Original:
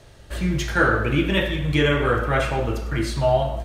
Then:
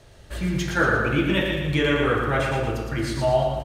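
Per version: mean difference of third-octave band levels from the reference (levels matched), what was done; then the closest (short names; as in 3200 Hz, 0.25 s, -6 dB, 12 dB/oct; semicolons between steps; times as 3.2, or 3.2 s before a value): 2.5 dB: feedback echo 0.115 s, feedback 44%, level -5 dB; gain -2.5 dB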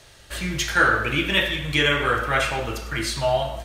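5.0 dB: tilt shelf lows -6.5 dB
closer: first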